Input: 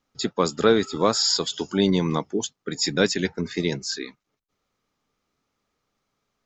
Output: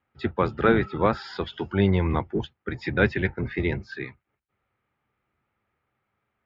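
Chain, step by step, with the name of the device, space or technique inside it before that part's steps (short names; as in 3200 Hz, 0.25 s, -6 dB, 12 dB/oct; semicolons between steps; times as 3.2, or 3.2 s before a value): sub-octave bass pedal (octaver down 1 oct, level -2 dB; speaker cabinet 64–2400 Hz, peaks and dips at 100 Hz -5 dB, 170 Hz -9 dB, 270 Hz -10 dB, 450 Hz -7 dB, 630 Hz -5 dB, 1100 Hz -6 dB); gain +4 dB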